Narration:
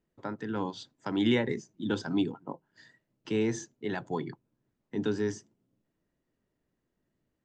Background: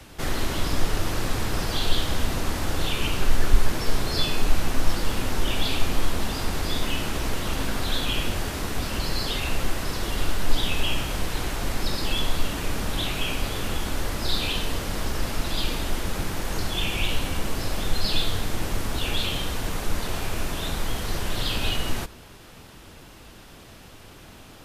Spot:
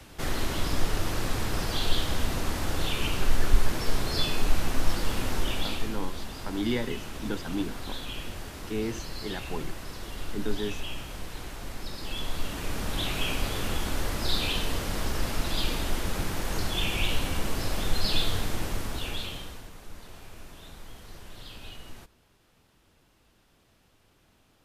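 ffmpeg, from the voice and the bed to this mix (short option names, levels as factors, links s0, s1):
-filter_complex "[0:a]adelay=5400,volume=0.708[s0];[1:a]volume=2,afade=t=out:st=5.35:d=0.65:silence=0.398107,afade=t=in:st=11.95:d=1.28:silence=0.354813,afade=t=out:st=18.39:d=1.31:silence=0.158489[s1];[s0][s1]amix=inputs=2:normalize=0"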